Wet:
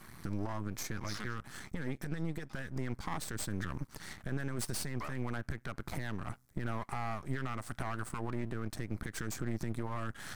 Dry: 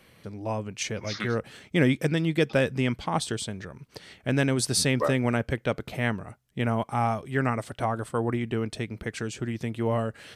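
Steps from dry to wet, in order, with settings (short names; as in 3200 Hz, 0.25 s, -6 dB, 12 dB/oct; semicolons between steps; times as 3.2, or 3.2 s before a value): compressor 12:1, threshold -35 dBFS, peak gain reduction 19 dB; limiter -32 dBFS, peak gain reduction 10 dB; fixed phaser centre 1200 Hz, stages 4; half-wave rectifier; gain +11 dB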